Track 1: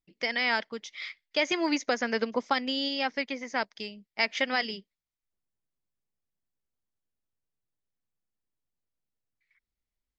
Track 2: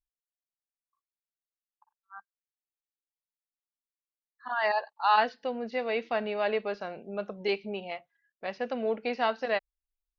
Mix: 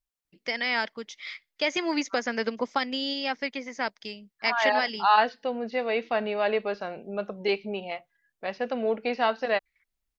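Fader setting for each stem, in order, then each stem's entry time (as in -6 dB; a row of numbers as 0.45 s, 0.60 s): 0.0 dB, +3.0 dB; 0.25 s, 0.00 s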